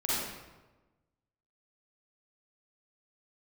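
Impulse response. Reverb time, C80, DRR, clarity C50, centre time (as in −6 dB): 1.2 s, −0.5 dB, −9.0 dB, −5.5 dB, 104 ms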